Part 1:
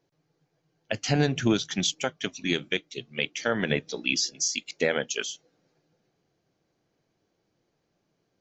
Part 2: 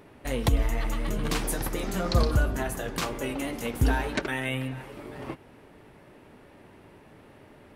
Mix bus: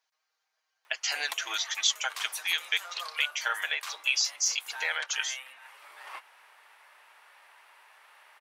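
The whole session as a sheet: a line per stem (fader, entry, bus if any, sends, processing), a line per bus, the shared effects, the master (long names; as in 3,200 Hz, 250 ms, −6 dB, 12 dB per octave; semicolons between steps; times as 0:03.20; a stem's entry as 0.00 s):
−1.0 dB, 0.00 s, no send, comb filter 6.4 ms, depth 72%
+2.0 dB, 0.85 s, no send, automatic ducking −9 dB, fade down 1.70 s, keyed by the first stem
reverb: not used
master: high-pass filter 940 Hz 24 dB per octave; speech leveller 2 s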